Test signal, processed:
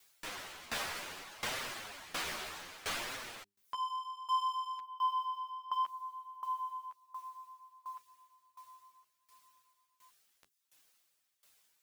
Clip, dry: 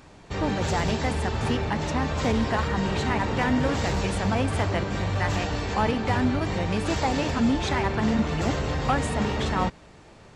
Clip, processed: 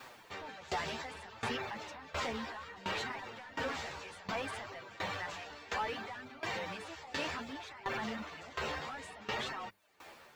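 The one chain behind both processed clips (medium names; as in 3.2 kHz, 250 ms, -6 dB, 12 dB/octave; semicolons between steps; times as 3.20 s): overdrive pedal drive 18 dB, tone 2.5 kHz, clips at -11 dBFS; added noise white -60 dBFS; tilt shelf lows -4 dB, about 910 Hz; hum notches 50/100/150/200/250/300/350/400 Hz; reverb removal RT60 0.51 s; peak limiter -20 dBFS; flange 0.63 Hz, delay 7.4 ms, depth 6.3 ms, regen 0%; sawtooth tremolo in dB decaying 1.4 Hz, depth 19 dB; trim -4.5 dB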